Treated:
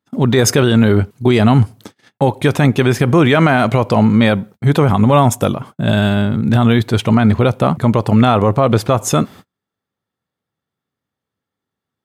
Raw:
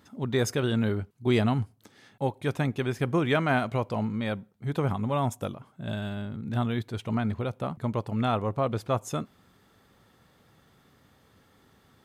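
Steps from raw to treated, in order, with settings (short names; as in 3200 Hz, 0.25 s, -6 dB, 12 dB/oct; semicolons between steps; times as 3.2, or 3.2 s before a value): gate -52 dBFS, range -41 dB; HPF 78 Hz 12 dB/oct; maximiser +21 dB; gain -1 dB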